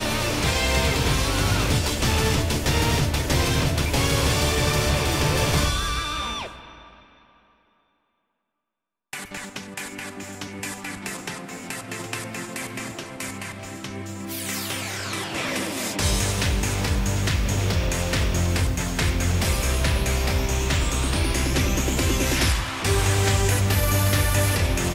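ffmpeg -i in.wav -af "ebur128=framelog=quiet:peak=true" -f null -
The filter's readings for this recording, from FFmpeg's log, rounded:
Integrated loudness:
  I:         -23.3 LUFS
  Threshold: -33.9 LUFS
Loudness range:
  LRA:        13.2 LU
  Threshold: -44.5 LUFS
  LRA low:   -34.7 LUFS
  LRA high:  -21.5 LUFS
True peak:
  Peak:      -10.2 dBFS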